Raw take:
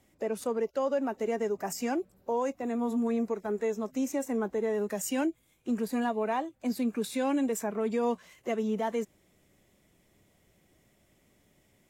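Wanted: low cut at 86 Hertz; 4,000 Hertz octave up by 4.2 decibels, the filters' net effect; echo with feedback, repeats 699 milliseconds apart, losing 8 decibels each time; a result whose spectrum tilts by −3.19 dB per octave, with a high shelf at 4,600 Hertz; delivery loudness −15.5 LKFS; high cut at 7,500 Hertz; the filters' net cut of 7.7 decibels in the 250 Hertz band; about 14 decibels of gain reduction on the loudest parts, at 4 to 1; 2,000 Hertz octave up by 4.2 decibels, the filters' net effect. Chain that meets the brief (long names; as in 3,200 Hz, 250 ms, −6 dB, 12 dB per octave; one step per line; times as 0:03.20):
high-pass filter 86 Hz
low-pass filter 7,500 Hz
parametric band 250 Hz −8.5 dB
parametric band 2,000 Hz +4.5 dB
parametric band 4,000 Hz +6 dB
high-shelf EQ 4,600 Hz −3 dB
downward compressor 4 to 1, threshold −44 dBFS
repeating echo 699 ms, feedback 40%, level −8 dB
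level +30 dB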